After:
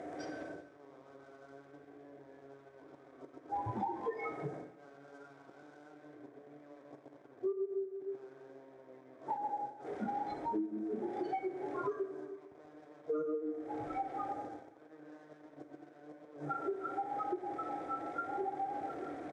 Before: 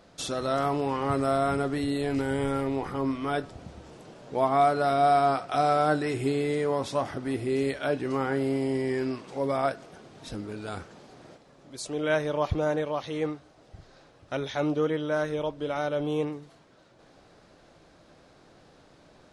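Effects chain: per-bin compression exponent 0.4; flipped gate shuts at -14 dBFS, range -40 dB; upward compressor, threshold -36 dBFS; loudest bins only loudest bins 32; bouncing-ball echo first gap 0.13 s, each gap 0.65×, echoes 5; formant shift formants +2 st; dynamic EQ 1100 Hz, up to -8 dB, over -53 dBFS, Q 4.3; sample leveller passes 5; spectral noise reduction 30 dB; speaker cabinet 170–9000 Hz, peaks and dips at 320 Hz +9 dB, 540 Hz +4 dB, 830 Hz -6 dB, 1300 Hz -3 dB, 2800 Hz -10 dB, 4300 Hz -6 dB; on a send at -5.5 dB: reverb, pre-delay 3 ms; on the sum: compressor 16:1, threshold -36 dBFS, peak gain reduction 21.5 dB; gain +2.5 dB

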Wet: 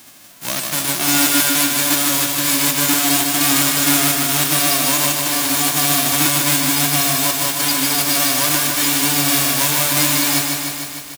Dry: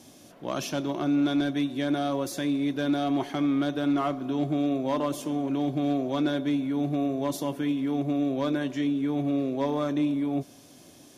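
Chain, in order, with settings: spectral whitening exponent 0.1; doubler 19 ms -13 dB; lo-fi delay 0.151 s, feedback 80%, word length 7-bit, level -4 dB; gain +8 dB

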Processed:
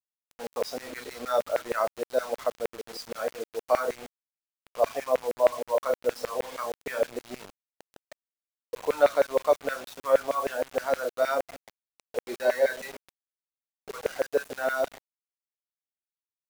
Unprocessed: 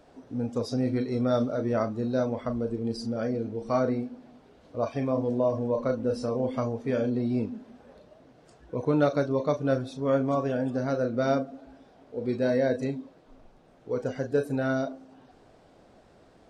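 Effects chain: LFO high-pass saw down 6.4 Hz 490–2200 Hz; 12.28–13.96 comb 5.2 ms, depth 57%; bit-crush 7-bit

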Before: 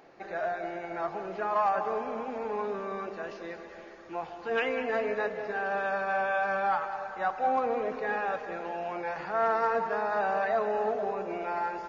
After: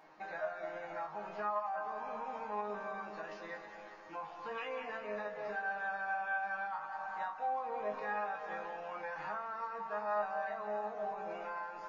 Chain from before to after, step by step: fifteen-band EQ 100 Hz -9 dB, 400 Hz -7 dB, 1000 Hz +7 dB; compressor 6:1, threshold -33 dBFS, peak gain reduction 13.5 dB; resonator bank G#2 fifth, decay 0.23 s; gain +6.5 dB

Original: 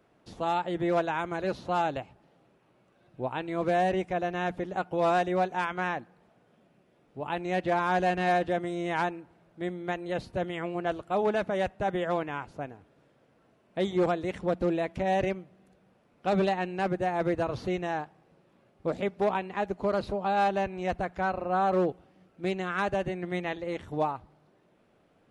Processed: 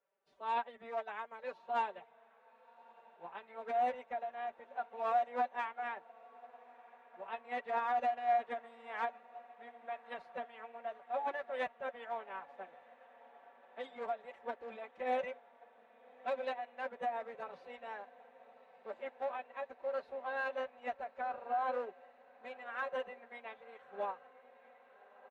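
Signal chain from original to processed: three-band isolator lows -23 dB, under 420 Hz, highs -13 dB, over 3100 Hz; comb 6.9 ms, depth 58%; formant-preserving pitch shift +5 st; on a send: diffused feedback echo 1.238 s, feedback 78%, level -15 dB; on the sum: upward expander 1.5:1, over -45 dBFS; gain -6 dB

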